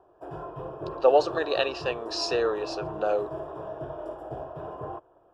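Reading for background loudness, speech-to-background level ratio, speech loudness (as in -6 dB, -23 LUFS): -37.5 LUFS, 11.0 dB, -26.5 LUFS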